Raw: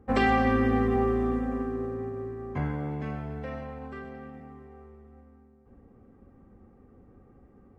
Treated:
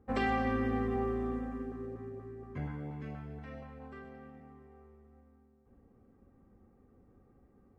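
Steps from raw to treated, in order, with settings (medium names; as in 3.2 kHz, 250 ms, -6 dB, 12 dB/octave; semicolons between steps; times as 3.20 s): 1.48–3.80 s: LFO notch saw up 4.2 Hz 340–1600 Hz; trim -8 dB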